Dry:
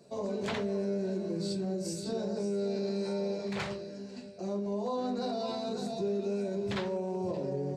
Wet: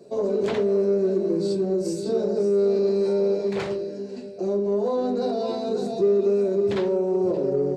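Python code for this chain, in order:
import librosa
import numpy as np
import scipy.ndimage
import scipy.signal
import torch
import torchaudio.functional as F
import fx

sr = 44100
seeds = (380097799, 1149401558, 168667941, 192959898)

p1 = fx.peak_eq(x, sr, hz=390.0, db=12.5, octaves=1.2)
p2 = 10.0 ** (-22.5 / 20.0) * np.tanh(p1 / 10.0 ** (-22.5 / 20.0))
y = p1 + (p2 * librosa.db_to_amplitude(-11.5))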